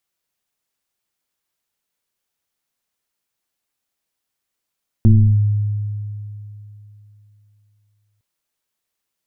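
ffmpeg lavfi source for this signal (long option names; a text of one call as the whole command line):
ffmpeg -f lavfi -i "aevalsrc='0.531*pow(10,-3*t/3.16)*sin(2*PI*104*t+0.95*clip(1-t/0.34,0,1)*sin(2*PI*1.12*104*t))':duration=3.16:sample_rate=44100" out.wav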